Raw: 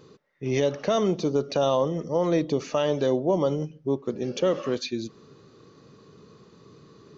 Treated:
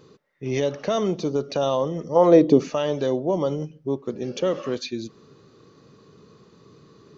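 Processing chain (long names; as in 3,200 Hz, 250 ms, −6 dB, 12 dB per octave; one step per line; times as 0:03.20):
0:02.15–0:02.68: parametric band 940 Hz → 190 Hz +12 dB 2 octaves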